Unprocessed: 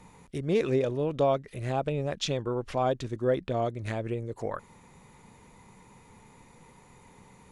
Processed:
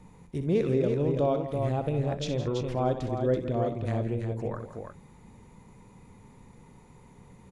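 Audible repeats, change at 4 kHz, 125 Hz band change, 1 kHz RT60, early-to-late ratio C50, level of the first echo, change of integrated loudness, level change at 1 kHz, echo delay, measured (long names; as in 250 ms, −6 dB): 4, −5.0 dB, +4.0 dB, no reverb audible, no reverb audible, −10.0 dB, +1.0 dB, −2.0 dB, 63 ms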